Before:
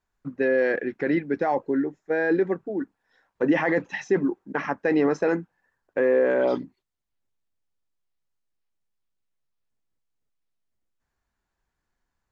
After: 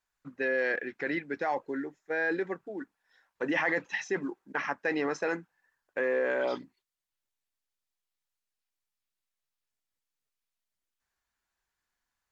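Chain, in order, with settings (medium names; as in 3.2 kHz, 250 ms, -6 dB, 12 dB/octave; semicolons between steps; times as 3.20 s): tilt shelf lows -7 dB, about 770 Hz; trim -5.5 dB; MP3 80 kbps 48 kHz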